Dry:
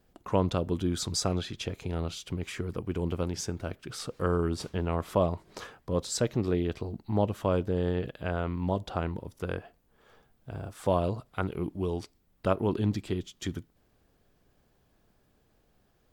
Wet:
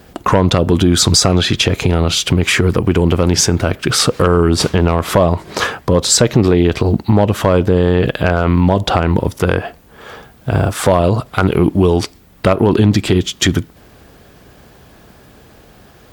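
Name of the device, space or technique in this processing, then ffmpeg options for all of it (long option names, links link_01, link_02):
mastering chain: -af "highpass=44,equalizer=frequency=1900:width_type=o:width=2.5:gain=2.5,acompressor=threshold=-32dB:ratio=2,asoftclip=type=tanh:threshold=-18dB,asoftclip=type=hard:threshold=-22.5dB,alimiter=level_in=26dB:limit=-1dB:release=50:level=0:latency=1,volume=-1dB"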